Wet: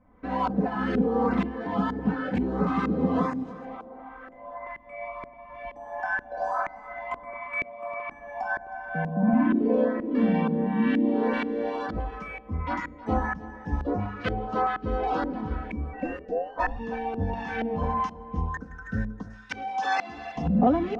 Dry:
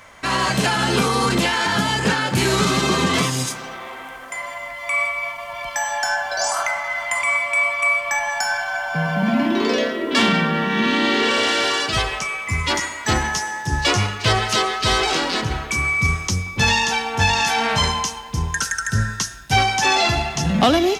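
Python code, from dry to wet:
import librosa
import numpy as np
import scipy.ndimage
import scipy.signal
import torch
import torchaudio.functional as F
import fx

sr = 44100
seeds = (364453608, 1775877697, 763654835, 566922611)

p1 = fx.highpass(x, sr, hz=94.0, slope=12, at=(7.64, 8.09))
p2 = fx.ring_mod(p1, sr, carrier_hz=fx.line((15.92, 350.0), (16.78, 970.0)), at=(15.92, 16.78), fade=0.02)
p3 = p2 + 0.89 * np.pad(p2, (int(4.0 * sr / 1000.0), 0))[:len(p2)]
p4 = fx.filter_lfo_lowpass(p3, sr, shape='saw_up', hz=2.1, low_hz=330.0, high_hz=1500.0, q=1.1)
p5 = fx.weighting(p4, sr, curve='ITU-R 468', at=(19.3, 20.37))
p6 = fx.filter_lfo_notch(p5, sr, shape='saw_up', hz=1.5, low_hz=380.0, high_hz=3600.0, q=1.4)
p7 = p6 + fx.echo_single(p6, sr, ms=316, db=-17.5, dry=0)
y = p7 * librosa.db_to_amplitude(-6.5)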